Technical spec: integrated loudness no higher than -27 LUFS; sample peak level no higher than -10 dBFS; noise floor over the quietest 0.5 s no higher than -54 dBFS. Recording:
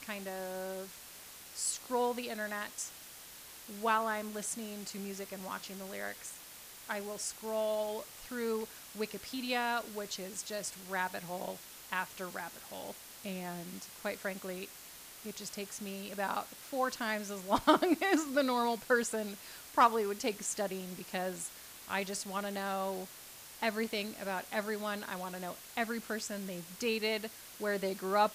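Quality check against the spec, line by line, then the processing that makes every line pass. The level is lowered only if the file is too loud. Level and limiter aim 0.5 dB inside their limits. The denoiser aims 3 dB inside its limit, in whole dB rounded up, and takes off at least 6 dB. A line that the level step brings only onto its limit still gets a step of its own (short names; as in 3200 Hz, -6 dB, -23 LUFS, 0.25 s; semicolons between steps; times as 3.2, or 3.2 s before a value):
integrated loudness -36.0 LUFS: OK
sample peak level -14.5 dBFS: OK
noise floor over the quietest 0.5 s -51 dBFS: fail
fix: denoiser 6 dB, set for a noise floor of -51 dBFS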